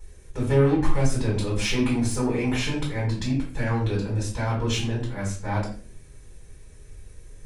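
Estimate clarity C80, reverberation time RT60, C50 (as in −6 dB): 10.5 dB, 0.45 s, 5.5 dB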